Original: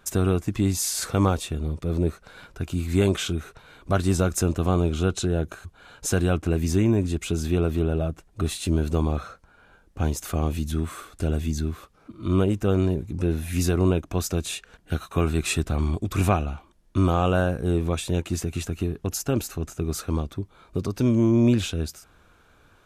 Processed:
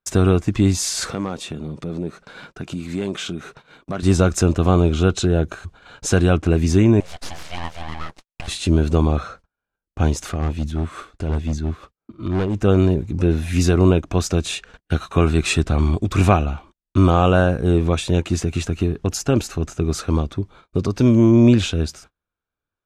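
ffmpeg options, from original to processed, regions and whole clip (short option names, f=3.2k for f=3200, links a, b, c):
-filter_complex "[0:a]asettb=1/sr,asplit=3[a][b][c];[a]atrim=end=1.114[d];[b]atrim=start=1.11:end=4.03,asetpts=PTS-STARTPTS,afade=t=in:d=0.004:c=qsin,afade=t=out:st=2.916:d=0.004:c=qsin,lowshelf=f=110:t=q:w=1.5:g=-11,acompressor=threshold=-35dB:ratio=2:attack=3.2:release=140:knee=1:detection=peak,asoftclip=type=hard:threshold=-22dB[e];[c]atrim=start=4.026[f];[d][e]acrossfade=d=0.004:c1=hsin:c2=qsin[g];[g][f]acrossfade=d=0.004:c1=qsin:c2=hsin,asettb=1/sr,asplit=3[h][i][j];[h]atrim=end=7.004[k];[i]atrim=start=7:end=8.48,asetpts=PTS-STARTPTS,afade=t=in:d=0.004:c=qsin,afade=t=out:st=1.476:d=0.004:c=qsin,highpass=640,aeval=exprs='abs(val(0))':c=same[l];[j]atrim=start=8.476[m];[k][l]acrossfade=d=0.004:c1=hsin:c2=qsin[n];[n][m]acrossfade=d=0.004:c1=qsin:c2=hsin,asettb=1/sr,asplit=3[o][p][q];[o]atrim=end=10.294[r];[p]atrim=start=10.29:end=12.56,asetpts=PTS-STARTPTS,afade=t=in:d=0.004:c=qsin,afade=t=out:st=2.266:d=0.004:c=qsin,highshelf=f=4.7k:g=-6,tremolo=f=5.7:d=0.54,asoftclip=type=hard:threshold=-23.5dB[s];[q]atrim=start=12.556[t];[r][s]acrossfade=d=0.004:c1=hsin:c2=qsin[u];[u][t]acrossfade=d=0.004:c1=qsin:c2=hsin,agate=range=-37dB:threshold=-48dB:ratio=16:detection=peak,lowpass=7k,volume=6.5dB"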